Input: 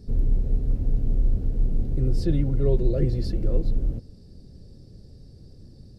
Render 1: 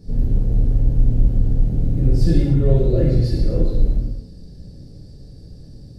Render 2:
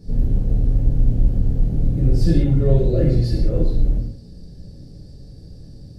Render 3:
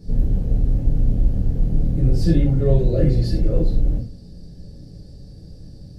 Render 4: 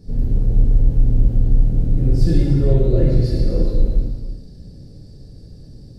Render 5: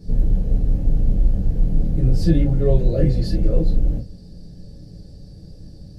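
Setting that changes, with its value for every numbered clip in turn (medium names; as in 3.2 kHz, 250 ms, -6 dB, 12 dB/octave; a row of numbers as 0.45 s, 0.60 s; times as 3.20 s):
gated-style reverb, gate: 330 ms, 220 ms, 130 ms, 530 ms, 80 ms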